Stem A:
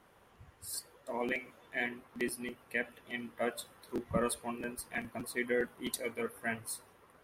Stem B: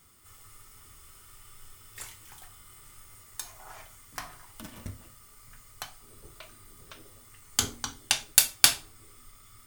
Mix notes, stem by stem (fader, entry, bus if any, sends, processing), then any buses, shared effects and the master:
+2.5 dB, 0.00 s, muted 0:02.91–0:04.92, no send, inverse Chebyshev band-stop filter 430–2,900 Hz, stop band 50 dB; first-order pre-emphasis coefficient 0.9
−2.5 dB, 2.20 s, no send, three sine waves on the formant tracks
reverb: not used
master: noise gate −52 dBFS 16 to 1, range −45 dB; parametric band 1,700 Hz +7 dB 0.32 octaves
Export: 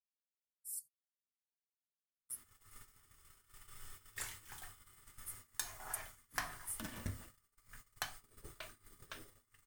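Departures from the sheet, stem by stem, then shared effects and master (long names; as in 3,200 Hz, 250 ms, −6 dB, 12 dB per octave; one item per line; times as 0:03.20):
stem A +2.5 dB → −4.5 dB
stem B: missing three sine waves on the formant tracks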